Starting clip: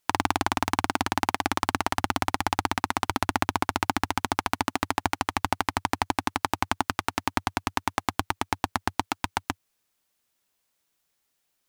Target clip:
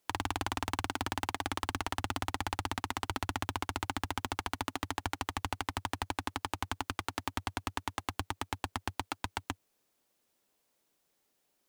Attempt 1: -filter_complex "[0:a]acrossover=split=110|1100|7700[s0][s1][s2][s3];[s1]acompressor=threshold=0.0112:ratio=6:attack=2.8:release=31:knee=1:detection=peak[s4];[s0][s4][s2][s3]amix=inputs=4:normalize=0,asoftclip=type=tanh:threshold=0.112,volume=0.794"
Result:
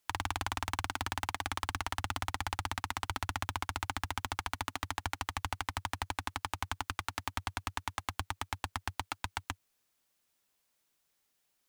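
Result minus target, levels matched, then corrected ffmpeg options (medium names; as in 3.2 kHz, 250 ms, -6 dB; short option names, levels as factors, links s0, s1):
500 Hz band -4.0 dB
-filter_complex "[0:a]acrossover=split=110|1100|7700[s0][s1][s2][s3];[s1]acompressor=threshold=0.0112:ratio=6:attack=2.8:release=31:knee=1:detection=peak,equalizer=f=400:t=o:w=2.9:g=8.5[s4];[s0][s4][s2][s3]amix=inputs=4:normalize=0,asoftclip=type=tanh:threshold=0.112,volume=0.794"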